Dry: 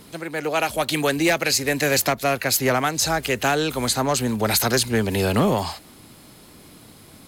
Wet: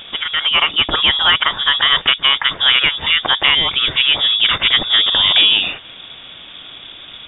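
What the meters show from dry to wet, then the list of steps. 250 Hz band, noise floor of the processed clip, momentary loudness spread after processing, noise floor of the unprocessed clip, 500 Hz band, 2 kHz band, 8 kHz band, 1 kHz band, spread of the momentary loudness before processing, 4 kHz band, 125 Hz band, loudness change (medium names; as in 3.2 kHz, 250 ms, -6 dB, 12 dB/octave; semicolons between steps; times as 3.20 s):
-11.0 dB, -37 dBFS, 4 LU, -48 dBFS, -9.5 dB, +8.5 dB, under -40 dB, +2.5 dB, 4 LU, +17.5 dB, -9.0 dB, +9.0 dB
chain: peaking EQ 320 Hz -8 dB 0.2 oct; frequency inversion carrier 3.6 kHz; in parallel at +2 dB: compression, threshold -32 dBFS, peak gain reduction 15.5 dB; on the sum: trim +5.5 dB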